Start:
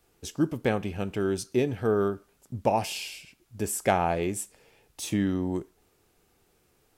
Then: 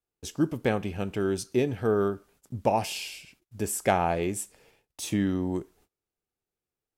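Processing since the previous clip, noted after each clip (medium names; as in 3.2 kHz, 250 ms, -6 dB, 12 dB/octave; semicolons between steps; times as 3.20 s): gate -59 dBFS, range -25 dB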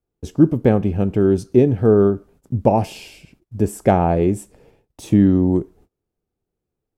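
tilt shelf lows +9.5 dB, about 920 Hz; trim +5 dB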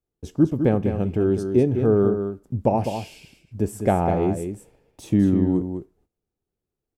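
delay 203 ms -7.5 dB; trim -5 dB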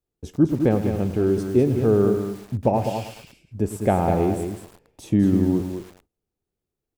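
bit-crushed delay 106 ms, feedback 55%, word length 6-bit, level -11.5 dB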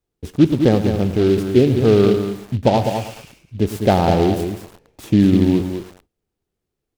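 delay time shaken by noise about 2.8 kHz, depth 0.033 ms; trim +5 dB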